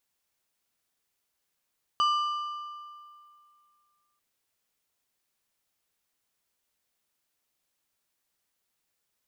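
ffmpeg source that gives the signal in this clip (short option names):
-f lavfi -i "aevalsrc='0.0944*pow(10,-3*t/2.34)*sin(2*PI*1190*t)+0.0355*pow(10,-3*t/1.778)*sin(2*PI*2975*t)+0.0133*pow(10,-3*t/1.544)*sin(2*PI*4760*t)+0.00501*pow(10,-3*t/1.444)*sin(2*PI*5950*t)+0.00188*pow(10,-3*t/1.335)*sin(2*PI*7735*t)':d=2.19:s=44100"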